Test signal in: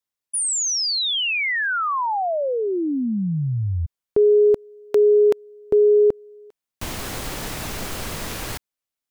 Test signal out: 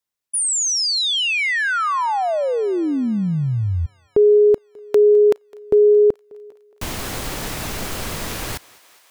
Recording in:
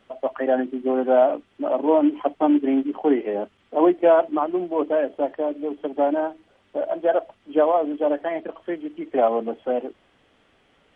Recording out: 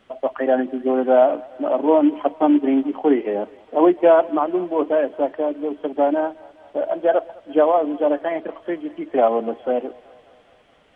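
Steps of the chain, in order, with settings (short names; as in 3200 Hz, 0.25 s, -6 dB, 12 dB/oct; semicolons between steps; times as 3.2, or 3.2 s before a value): thinning echo 0.208 s, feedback 77%, high-pass 450 Hz, level -22 dB; gain +2.5 dB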